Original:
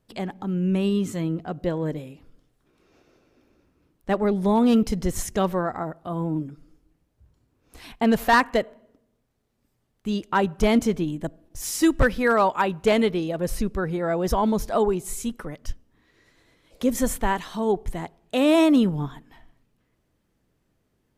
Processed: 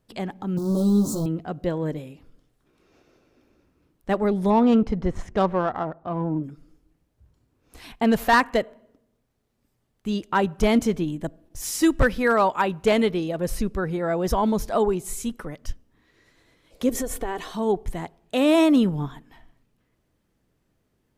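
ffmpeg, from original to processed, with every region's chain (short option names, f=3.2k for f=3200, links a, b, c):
-filter_complex "[0:a]asettb=1/sr,asplit=3[a][b][c];[a]atrim=end=0.574[d];[b]atrim=start=0.57:end=1.26,asetpts=PTS-STARTPTS,afade=t=in:d=0.004:c=qsin,afade=t=out:st=0.686:d=0.004:c=qsin,aeval=exprs='val(0)+0.5*0.0355*sgn(val(0))':c=same,asuperstop=centerf=2200:order=8:qfactor=0.79,asplit=2[e][f];[f]adelay=14,volume=-3dB[g];[e][g]amix=inputs=2:normalize=0,atrim=end_sample=30429[h];[c]atrim=start=1.256[i];[d][h]acrossfade=d=0.004:c1=hsin:c2=qsin[j];[j][i]acrossfade=d=0.004:c1=qsin:c2=hsin,asettb=1/sr,asplit=3[k][l][m];[k]atrim=end=4.504[n];[l]atrim=start=4.5:end=6.44,asetpts=PTS-STARTPTS,afade=t=in:d=0.004:c=qsin,afade=t=out:st=1.936:d=0.004:c=qsin,equalizer=f=910:t=o:w=1.7:g=3.5,adynamicsmooth=sensitivity=1.5:basefreq=2k[o];[m]atrim=start=6.436[p];[n][o]acrossfade=d=0.004:c1=hsin:c2=qsin[q];[q][p]acrossfade=d=0.004:c1=qsin:c2=hsin,asettb=1/sr,asplit=3[r][s][t];[r]atrim=end=16.894[u];[s]atrim=start=16.89:end=17.52,asetpts=PTS-STARTPTS,afade=t=in:d=0.004:c=qsin,afade=t=out:st=0.626:d=0.004:c=qsin,equalizer=f=480:t=o:w=0.87:g=10,aecho=1:1:2.7:0.46,atrim=end_sample=27783,acompressor=threshold=-24dB:ratio=6:attack=3.2:release=140:knee=1:detection=peak[v];[t]atrim=start=17.516[w];[u][v]acrossfade=d=0.004:c1=hsin:c2=qsin[x];[x][w]acrossfade=d=0.004:c1=qsin:c2=hsin"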